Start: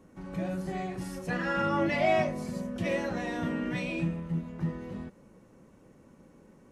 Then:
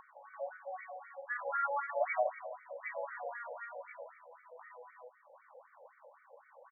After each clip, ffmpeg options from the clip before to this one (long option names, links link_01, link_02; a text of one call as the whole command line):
ffmpeg -i in.wav -filter_complex "[0:a]acompressor=mode=upward:threshold=-35dB:ratio=2.5,asplit=2[link_01][link_02];[link_02]adelay=166,lowpass=frequency=2600:poles=1,volume=-11dB,asplit=2[link_03][link_04];[link_04]adelay=166,lowpass=frequency=2600:poles=1,volume=0.53,asplit=2[link_05][link_06];[link_06]adelay=166,lowpass=frequency=2600:poles=1,volume=0.53,asplit=2[link_07][link_08];[link_08]adelay=166,lowpass=frequency=2600:poles=1,volume=0.53,asplit=2[link_09][link_10];[link_10]adelay=166,lowpass=frequency=2600:poles=1,volume=0.53,asplit=2[link_11][link_12];[link_12]adelay=166,lowpass=frequency=2600:poles=1,volume=0.53[link_13];[link_01][link_03][link_05][link_07][link_09][link_11][link_13]amix=inputs=7:normalize=0,afftfilt=real='re*between(b*sr/1024,630*pow(1700/630,0.5+0.5*sin(2*PI*3.9*pts/sr))/1.41,630*pow(1700/630,0.5+0.5*sin(2*PI*3.9*pts/sr))*1.41)':imag='im*between(b*sr/1024,630*pow(1700/630,0.5+0.5*sin(2*PI*3.9*pts/sr))/1.41,630*pow(1700/630,0.5+0.5*sin(2*PI*3.9*pts/sr))*1.41)':win_size=1024:overlap=0.75,volume=-1dB" out.wav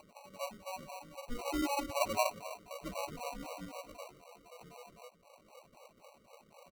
ffmpeg -i in.wav -af "acrusher=samples=26:mix=1:aa=0.000001" out.wav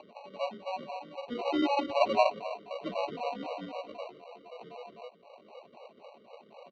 ffmpeg -i in.wav -filter_complex "[0:a]acrossover=split=240[link_01][link_02];[link_02]acontrast=50[link_03];[link_01][link_03]amix=inputs=2:normalize=0,highpass=150,equalizer=frequency=220:width_type=q:width=4:gain=5,equalizer=frequency=410:width_type=q:width=4:gain=7,equalizer=frequency=700:width_type=q:width=4:gain=4,equalizer=frequency=1300:width_type=q:width=4:gain=-7,equalizer=frequency=2300:width_type=q:width=4:gain=-4,equalizer=frequency=3400:width_type=q:width=4:gain=6,lowpass=frequency=3800:width=0.5412,lowpass=frequency=3800:width=1.3066" out.wav